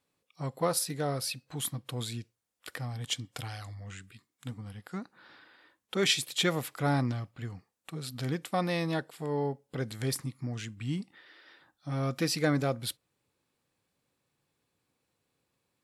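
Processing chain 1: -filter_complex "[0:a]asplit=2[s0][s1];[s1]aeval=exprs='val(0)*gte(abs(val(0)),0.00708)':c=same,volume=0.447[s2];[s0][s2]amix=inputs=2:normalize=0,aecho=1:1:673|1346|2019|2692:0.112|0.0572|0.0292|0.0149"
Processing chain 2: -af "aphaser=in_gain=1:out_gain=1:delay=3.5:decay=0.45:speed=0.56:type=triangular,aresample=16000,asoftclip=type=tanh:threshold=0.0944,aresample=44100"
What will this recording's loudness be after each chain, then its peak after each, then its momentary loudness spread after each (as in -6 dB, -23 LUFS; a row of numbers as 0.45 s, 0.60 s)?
-30.0 LUFS, -33.5 LUFS; -10.5 dBFS, -17.5 dBFS; 19 LU, 16 LU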